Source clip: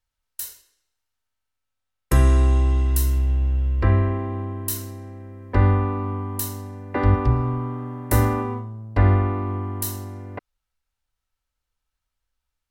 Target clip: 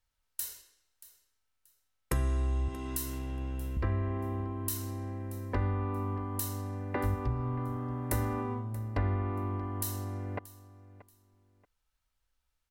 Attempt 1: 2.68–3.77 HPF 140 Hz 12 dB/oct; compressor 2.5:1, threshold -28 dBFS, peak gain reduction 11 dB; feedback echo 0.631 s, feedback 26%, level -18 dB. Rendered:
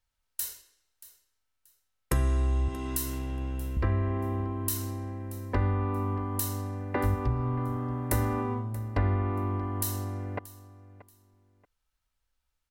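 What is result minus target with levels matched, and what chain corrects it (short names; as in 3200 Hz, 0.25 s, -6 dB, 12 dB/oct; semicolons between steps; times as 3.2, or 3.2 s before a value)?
compressor: peak gain reduction -4 dB
2.68–3.77 HPF 140 Hz 12 dB/oct; compressor 2.5:1, threshold -34.5 dBFS, peak gain reduction 15 dB; feedback echo 0.631 s, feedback 26%, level -18 dB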